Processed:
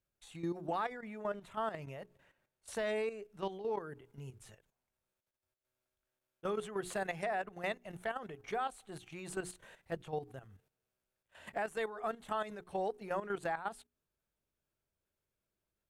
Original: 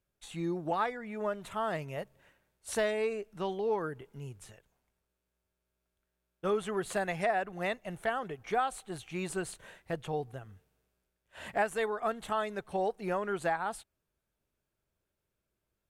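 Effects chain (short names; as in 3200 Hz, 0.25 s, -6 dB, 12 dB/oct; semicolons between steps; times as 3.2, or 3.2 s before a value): notches 60/120/180/240/300/360/420 Hz; level quantiser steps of 11 dB; 1.24–2.96 high shelf 7200 Hz -5.5 dB; gain -1.5 dB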